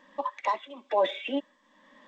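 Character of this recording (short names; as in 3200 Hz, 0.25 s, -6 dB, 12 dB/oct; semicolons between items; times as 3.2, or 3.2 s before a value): tremolo triangle 1.1 Hz, depth 80%; G.722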